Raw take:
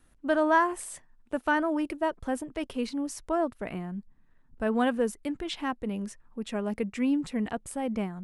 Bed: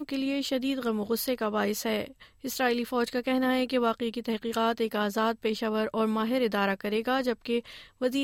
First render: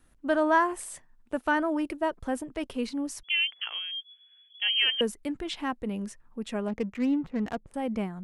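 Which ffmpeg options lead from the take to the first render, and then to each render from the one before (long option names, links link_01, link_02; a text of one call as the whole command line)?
ffmpeg -i in.wav -filter_complex "[0:a]asettb=1/sr,asplit=3[link_01][link_02][link_03];[link_01]atrim=end=3.234[link_04];[link_02]atrim=start=3.23:end=5.01,asetpts=PTS-STARTPTS,afade=type=in:duration=0.004:curve=qsin,afade=type=out:start_time=1.776:duration=0.004:curve=qsin,lowpass=frequency=2900:width_type=q:width=0.5098,lowpass=frequency=2900:width_type=q:width=0.6013,lowpass=frequency=2900:width_type=q:width=0.9,lowpass=frequency=2900:width_type=q:width=2.563,afreqshift=-3400[link_05];[link_03]atrim=start=5.006[link_06];[link_04][link_05]acrossfade=duration=0.004:curve1=hsin:curve2=qsin[link_07];[link_07][link_06]acrossfade=duration=0.004:curve1=qsin:curve2=hsin,asettb=1/sr,asplit=3[link_08][link_09][link_10];[link_08]atrim=end=6.684[link_11];[link_09]atrim=start=6.68:end=7.74,asetpts=PTS-STARTPTS,afade=type=in:duration=0.004:curve=qsin,afade=type=out:start_time=1.056:duration=0.004:curve=qsin,adynamicsmooth=sensitivity=7:basefreq=760[link_12];[link_10]atrim=start=7.736[link_13];[link_11][link_12]acrossfade=duration=0.004:curve1=hsin:curve2=qsin[link_14];[link_14][link_13]acrossfade=duration=0.004:curve1=qsin:curve2=hsin" out.wav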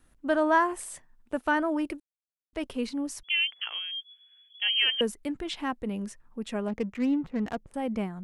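ffmpeg -i in.wav -filter_complex "[0:a]asplit=3[link_01][link_02][link_03];[link_01]atrim=end=2,asetpts=PTS-STARTPTS,afade=type=out:start_time=1.996:duration=0.004:curve=hsin[link_04];[link_02]atrim=start=2:end=2.53,asetpts=PTS-STARTPTS,volume=0[link_05];[link_03]atrim=start=2.53,asetpts=PTS-STARTPTS,afade=type=in:duration=0.004:curve=hsin[link_06];[link_04][link_05][link_06]concat=n=3:v=0:a=1" out.wav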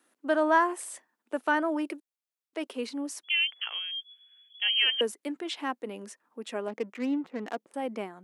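ffmpeg -i in.wav -af "highpass=frequency=280:width=0.5412,highpass=frequency=280:width=1.3066" out.wav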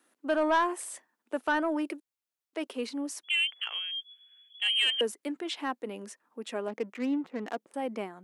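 ffmpeg -i in.wav -af "asoftclip=type=tanh:threshold=-17.5dB" out.wav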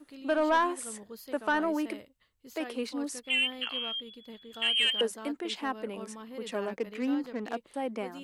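ffmpeg -i in.wav -i bed.wav -filter_complex "[1:a]volume=-17dB[link_01];[0:a][link_01]amix=inputs=2:normalize=0" out.wav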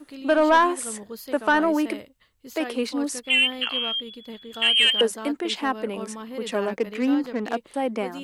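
ffmpeg -i in.wav -af "volume=8dB" out.wav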